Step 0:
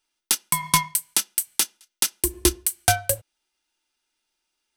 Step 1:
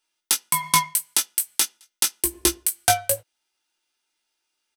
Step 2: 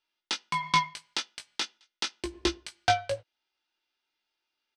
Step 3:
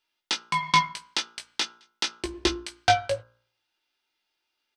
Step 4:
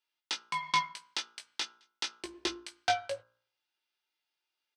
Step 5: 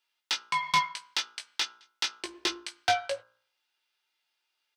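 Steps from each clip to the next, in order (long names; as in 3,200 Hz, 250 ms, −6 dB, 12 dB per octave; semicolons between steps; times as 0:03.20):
low-shelf EQ 180 Hz −11.5 dB; double-tracking delay 18 ms −6 dB
low-pass filter 4,800 Hz 24 dB per octave; level −3.5 dB
hum removal 58.1 Hz, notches 28; level +4 dB
high-pass filter 390 Hz 6 dB per octave; level −7.5 dB
mid-hump overdrive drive 12 dB, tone 7,900 Hz, clips at −14 dBFS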